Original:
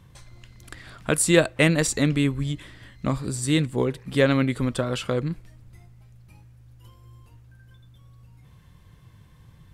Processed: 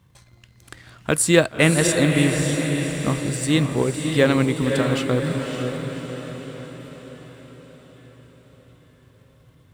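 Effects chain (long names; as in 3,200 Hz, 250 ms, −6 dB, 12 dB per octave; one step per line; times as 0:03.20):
mu-law and A-law mismatch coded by A
high-pass filter 60 Hz
feedback delay with all-pass diffusion 576 ms, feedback 54%, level −5 dB
level +2.5 dB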